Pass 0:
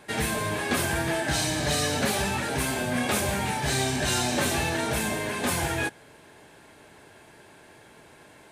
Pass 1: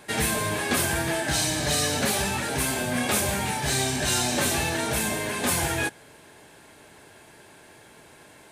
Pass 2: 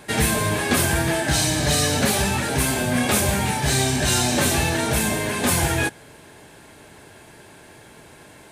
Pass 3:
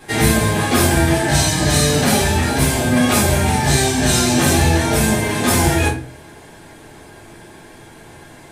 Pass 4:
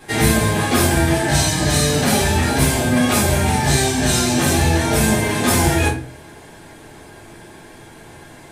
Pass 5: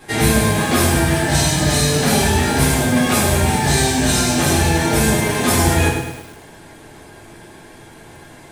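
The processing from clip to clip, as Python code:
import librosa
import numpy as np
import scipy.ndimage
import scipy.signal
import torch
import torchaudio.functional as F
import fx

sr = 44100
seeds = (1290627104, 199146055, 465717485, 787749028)

y1 = fx.high_shelf(x, sr, hz=4700.0, db=5.5)
y1 = fx.rider(y1, sr, range_db=10, speed_s=2.0)
y2 = fx.low_shelf(y1, sr, hz=230.0, db=5.5)
y2 = y2 * librosa.db_to_amplitude(3.5)
y3 = fx.room_shoebox(y2, sr, seeds[0], volume_m3=220.0, walls='furnished', distance_m=3.8)
y3 = y3 * librosa.db_to_amplitude(-3.0)
y4 = fx.rider(y3, sr, range_db=10, speed_s=0.5)
y4 = y4 * librosa.db_to_amplitude(-1.0)
y5 = fx.echo_crushed(y4, sr, ms=104, feedback_pct=55, bits=6, wet_db=-7.0)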